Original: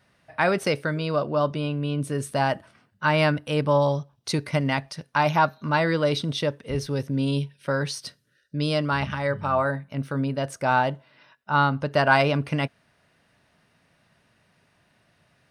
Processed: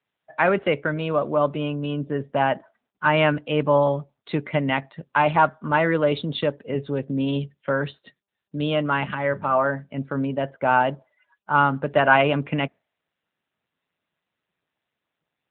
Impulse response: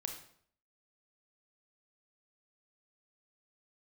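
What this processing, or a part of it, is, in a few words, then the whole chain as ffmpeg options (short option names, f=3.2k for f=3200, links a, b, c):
mobile call with aggressive noise cancelling: -af "highpass=170,afftdn=nr=34:nf=-46,volume=3dB" -ar 8000 -c:a libopencore_amrnb -b:a 10200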